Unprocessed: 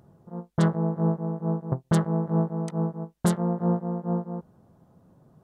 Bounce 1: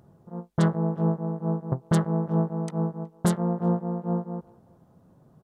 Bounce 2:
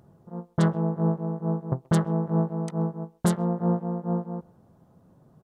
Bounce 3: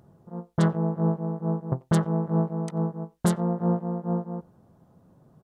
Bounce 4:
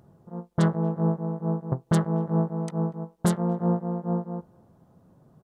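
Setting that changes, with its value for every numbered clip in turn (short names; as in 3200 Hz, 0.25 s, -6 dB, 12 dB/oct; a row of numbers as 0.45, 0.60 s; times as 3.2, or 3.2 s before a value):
speakerphone echo, time: 370, 130, 90, 240 ms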